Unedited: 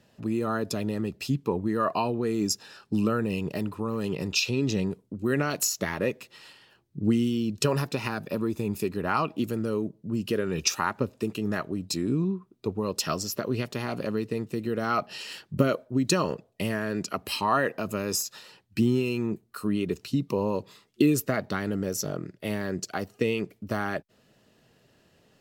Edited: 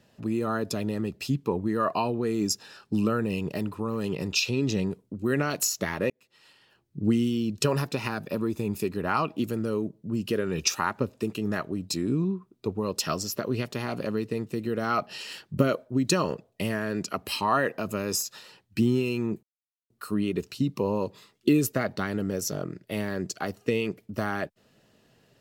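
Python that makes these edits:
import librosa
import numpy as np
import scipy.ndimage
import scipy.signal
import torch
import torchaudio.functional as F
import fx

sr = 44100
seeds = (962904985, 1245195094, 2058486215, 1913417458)

y = fx.edit(x, sr, fx.fade_in_span(start_s=6.1, length_s=0.9),
    fx.insert_silence(at_s=19.43, length_s=0.47), tone=tone)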